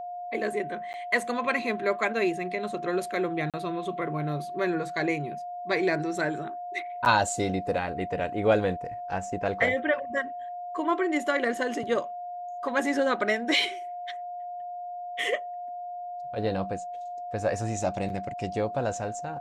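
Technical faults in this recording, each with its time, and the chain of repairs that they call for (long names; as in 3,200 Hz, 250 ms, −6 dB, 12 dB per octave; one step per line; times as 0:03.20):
whistle 710 Hz −34 dBFS
0:00.93–0:00.94: drop-out 9.9 ms
0:03.50–0:03.54: drop-out 37 ms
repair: notch filter 710 Hz, Q 30
repair the gap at 0:00.93, 9.9 ms
repair the gap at 0:03.50, 37 ms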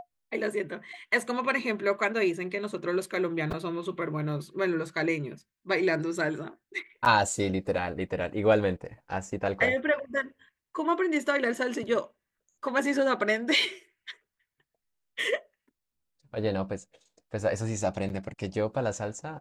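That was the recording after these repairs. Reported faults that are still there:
none of them is left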